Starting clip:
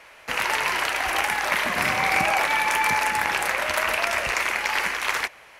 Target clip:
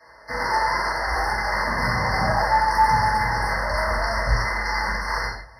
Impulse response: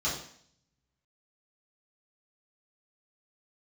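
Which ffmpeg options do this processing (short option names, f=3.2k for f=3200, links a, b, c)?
-filter_complex "[0:a]asubboost=boost=7.5:cutoff=120[a];[1:a]atrim=start_sample=2205,atrim=end_sample=6615,asetrate=33516,aresample=44100[b];[a][b]afir=irnorm=-1:irlink=0,afftfilt=real='re*eq(mod(floor(b*sr/1024/2100),2),0)':imag='im*eq(mod(floor(b*sr/1024/2100),2),0)':win_size=1024:overlap=0.75,volume=-8dB"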